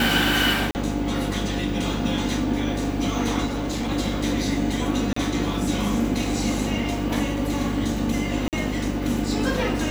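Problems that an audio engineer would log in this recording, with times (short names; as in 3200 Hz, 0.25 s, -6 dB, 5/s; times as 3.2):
buzz 50 Hz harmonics 11 -29 dBFS
0.71–0.75 gap 39 ms
3.45–3.9 clipped -22.5 dBFS
5.13–5.16 gap 34 ms
8.48–8.53 gap 48 ms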